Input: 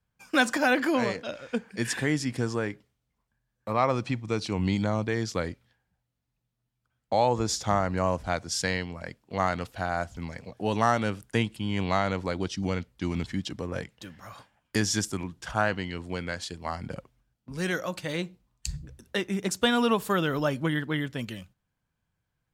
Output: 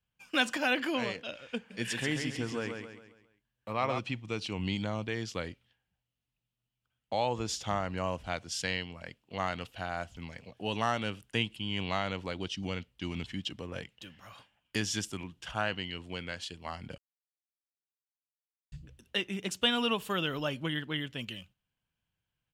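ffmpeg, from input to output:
-filter_complex "[0:a]asplit=3[s0][s1][s2];[s0]afade=t=out:st=1.7:d=0.02[s3];[s1]aecho=1:1:135|270|405|540|675:0.531|0.228|0.0982|0.0422|0.0181,afade=t=in:st=1.7:d=0.02,afade=t=out:st=3.98:d=0.02[s4];[s2]afade=t=in:st=3.98:d=0.02[s5];[s3][s4][s5]amix=inputs=3:normalize=0,asplit=3[s6][s7][s8];[s6]atrim=end=16.98,asetpts=PTS-STARTPTS,afade=t=out:st=16.976:d=0.004:c=hsin[s9];[s7]atrim=start=16.98:end=18.72,asetpts=PTS-STARTPTS,volume=0[s10];[s8]atrim=start=18.72,asetpts=PTS-STARTPTS,afade=t=in:d=0.004:c=hsin[s11];[s9][s10][s11]concat=n=3:v=0:a=1,equalizer=f=2900:w=2.4:g=12.5,volume=0.422"

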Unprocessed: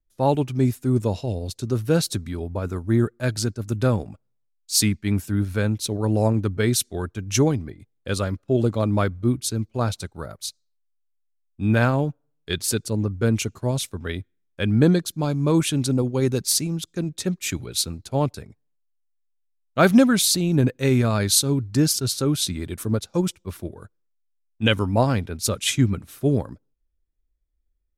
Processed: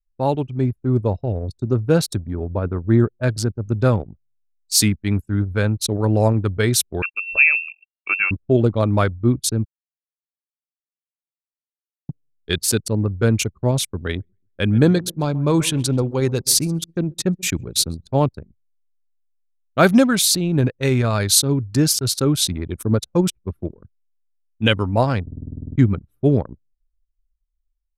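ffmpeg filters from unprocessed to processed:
-filter_complex "[0:a]asplit=3[s0][s1][s2];[s0]afade=t=out:st=0.6:d=0.02[s3];[s1]adynamicequalizer=threshold=0.00708:dfrequency=1500:dqfactor=0.7:tfrequency=1500:tqfactor=0.7:attack=5:release=100:ratio=0.375:range=3.5:mode=cutabove:tftype=highshelf,afade=t=in:st=0.6:d=0.02,afade=t=out:st=3.85:d=0.02[s4];[s2]afade=t=in:st=3.85:d=0.02[s5];[s3][s4][s5]amix=inputs=3:normalize=0,asettb=1/sr,asplit=3[s6][s7][s8];[s6]atrim=end=7.024[s9];[s7]atrim=start=7.02:end=8.31,asetpts=PTS-STARTPTS,afade=t=in:d=0.004:c=qsin,afade=t=out:st=1.286:d=0.004:c=qsin,lowpass=f=2400:t=q:w=0.5098,lowpass=f=2400:t=q:w=0.6013,lowpass=f=2400:t=q:w=0.9,lowpass=f=2400:t=q:w=2.563,afreqshift=-2800[s10];[s8]atrim=start=8.306[s11];[s9][s10]acrossfade=d=0.004:c1=hsin:c2=qsin[s12];[s12][s11]acrossfade=d=0.004:c1=qsin:c2=hsin,asettb=1/sr,asplit=3[s13][s14][s15];[s13]atrim=end=13.844[s16];[s14]atrim=start=13.84:end=18.11,asetpts=PTS-STARTPTS,afade=t=in:d=0.004:c=qsin,afade=t=out:st=4.266:d=0.004:c=qsin,aecho=1:1:132|264|396:0.112|0.046|0.0189,atrim=end_sample=188307[s17];[s15]atrim=start=18.106[s18];[s16][s17]acrossfade=d=0.004:c1=hsin:c2=qsin[s19];[s19][s18]acrossfade=d=0.004:c1=qsin:c2=hsin,asplit=14[s20][s21][s22][s23][s24][s25][s26][s27][s28][s29][s30][s31][s32][s33];[s20]atrim=end=9.65,asetpts=PTS-STARTPTS,afade=t=out:st=9.646:d=0.004:c=hsin[s34];[s21]atrim=start=9.65:end=12.09,asetpts=PTS-STARTPTS,volume=0[s35];[s22]atrim=start=12.09:end=25.272,asetpts=PTS-STARTPTS,afade=t=in:d=0.004:c=hsin[s36];[s23]atrim=start=25.218:end=25.272[s37];[s24]atrim=start=25.218:end=25.272[s38];[s25]atrim=start=25.218:end=25.272[s39];[s26]atrim=start=25.218:end=25.272[s40];[s27]atrim=start=25.218:end=25.272[s41];[s28]atrim=start=25.218:end=25.272[s42];[s29]atrim=start=25.218:end=25.272[s43];[s30]atrim=start=25.218:end=25.272[s44];[s31]atrim=start=25.218:end=25.272[s45];[s32]atrim=start=25.218:end=25.272[s46];[s33]atrim=start=25.768[s47];[s34][s35][s36]concat=n=3:v=0:a=1[s48];[s48][s37]acrossfade=d=0.004:c1=hsin:c2=hsin[s49];[s49][s38]acrossfade=d=0.004:c1=hsin:c2=hsin[s50];[s50][s39]acrossfade=d=0.004:c1=hsin:c2=hsin[s51];[s51][s40]acrossfade=d=0.004:c1=hsin:c2=hsin[s52];[s52][s41]acrossfade=d=0.004:c1=hsin:c2=hsin[s53];[s53][s42]acrossfade=d=0.004:c1=hsin:c2=hsin[s54];[s54][s43]acrossfade=d=0.004:c1=hsin:c2=hsin[s55];[s55][s44]acrossfade=d=0.004:c1=hsin:c2=hsin[s56];[s56][s45]acrossfade=d=0.004:c1=hsin:c2=hsin[s57];[s57][s46]acrossfade=d=0.004:c1=hsin:c2=hsin[s58];[s58][s47]acrossfade=d=0.004:c1=hsin:c2=hsin,anlmdn=25.1,adynamicequalizer=threshold=0.0251:dfrequency=240:dqfactor=0.96:tfrequency=240:tqfactor=0.96:attack=5:release=100:ratio=0.375:range=3:mode=cutabove:tftype=bell,dynaudnorm=f=110:g=13:m=1.88"

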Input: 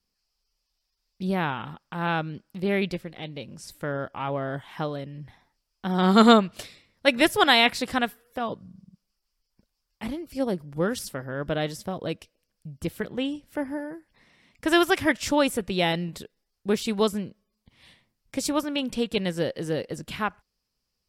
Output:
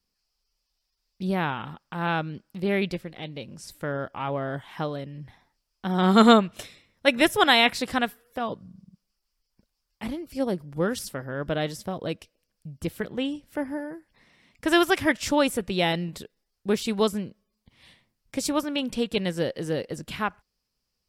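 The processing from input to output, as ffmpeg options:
-filter_complex "[0:a]asettb=1/sr,asplit=3[s0][s1][s2];[s0]atrim=end=5.884[s3];[s1]atrim=start=5.88:end=7.73,asetpts=PTS-STARTPTS,afade=t=in:d=0.004:c=qsin,afade=t=out:st=1.846:d=0.004:c=qsin,bandreject=f=4600:w=6.3[s4];[s2]atrim=start=7.726[s5];[s3][s4]acrossfade=d=0.004:c1=hsin:c2=qsin[s6];[s6][s5]acrossfade=d=0.004:c1=qsin:c2=hsin"

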